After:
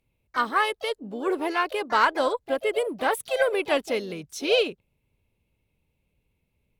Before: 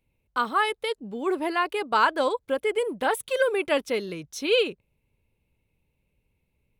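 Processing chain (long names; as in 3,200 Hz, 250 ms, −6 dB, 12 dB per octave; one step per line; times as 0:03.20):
pitch-shifted copies added +4 semitones −12 dB, +7 semitones −17 dB
harmonic generator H 2 −23 dB, 4 −42 dB, 7 −43 dB, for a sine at −8 dBFS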